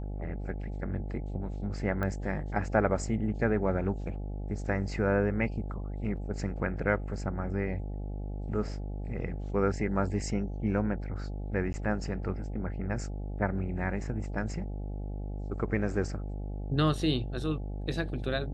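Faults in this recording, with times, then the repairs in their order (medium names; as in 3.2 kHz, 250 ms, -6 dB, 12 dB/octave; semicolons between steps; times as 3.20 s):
buzz 50 Hz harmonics 17 -36 dBFS
2.03 s: pop -21 dBFS
11.73–11.74 s: dropout 10 ms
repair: de-click; de-hum 50 Hz, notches 17; interpolate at 11.73 s, 10 ms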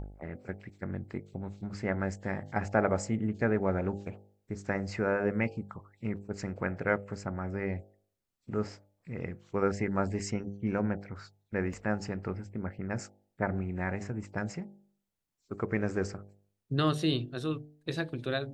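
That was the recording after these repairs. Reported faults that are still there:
nothing left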